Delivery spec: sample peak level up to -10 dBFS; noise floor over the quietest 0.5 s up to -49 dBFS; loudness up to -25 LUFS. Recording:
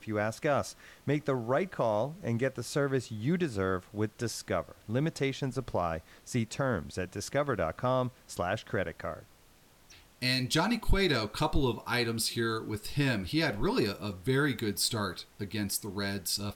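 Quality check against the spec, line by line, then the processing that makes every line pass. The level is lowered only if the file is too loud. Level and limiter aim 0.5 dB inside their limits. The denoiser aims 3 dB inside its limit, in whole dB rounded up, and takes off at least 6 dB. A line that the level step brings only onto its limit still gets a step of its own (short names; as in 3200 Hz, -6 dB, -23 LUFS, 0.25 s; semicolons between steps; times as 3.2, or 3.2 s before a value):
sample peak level -13.5 dBFS: OK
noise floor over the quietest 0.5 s -60 dBFS: OK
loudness -32.0 LUFS: OK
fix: none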